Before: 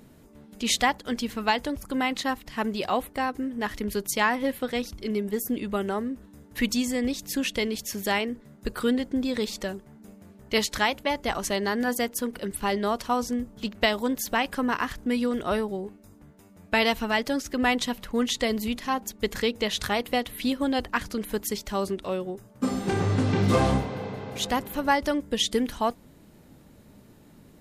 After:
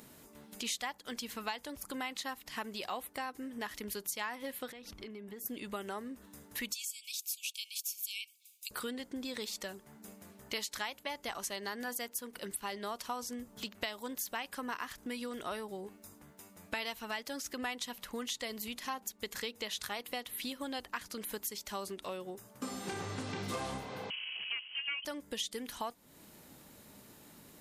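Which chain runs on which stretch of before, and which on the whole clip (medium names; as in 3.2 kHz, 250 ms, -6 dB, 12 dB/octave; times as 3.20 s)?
4.72–5.46 s: tone controls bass +2 dB, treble -13 dB + compression 16:1, threshold -37 dBFS
6.73–8.71 s: brick-wall FIR high-pass 2.2 kHz + treble shelf 8.2 kHz +7 dB
24.10–25.05 s: median filter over 25 samples + frequency inversion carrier 3.1 kHz
whole clip: tilt EQ +2.5 dB/octave; compression 3:1, threshold -40 dBFS; peaking EQ 990 Hz +2 dB; trim -1 dB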